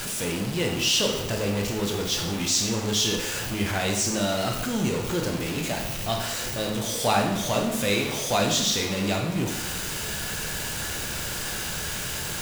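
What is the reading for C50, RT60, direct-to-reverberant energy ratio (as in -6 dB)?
4.5 dB, 0.95 s, 1.0 dB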